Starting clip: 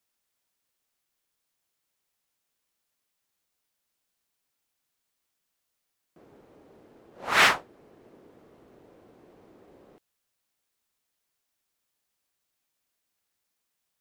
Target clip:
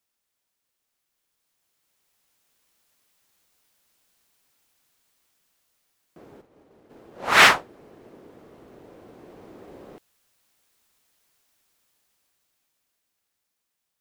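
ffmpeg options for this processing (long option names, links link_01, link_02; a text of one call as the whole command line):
ffmpeg -i in.wav -filter_complex "[0:a]asplit=3[link_01][link_02][link_03];[link_01]afade=type=out:start_time=6.4:duration=0.02[link_04];[link_02]agate=range=-33dB:threshold=-48dB:ratio=3:detection=peak,afade=type=in:start_time=6.4:duration=0.02,afade=type=out:start_time=6.89:duration=0.02[link_05];[link_03]afade=type=in:start_time=6.89:duration=0.02[link_06];[link_04][link_05][link_06]amix=inputs=3:normalize=0,dynaudnorm=framelen=230:gausssize=17:maxgain=12dB" out.wav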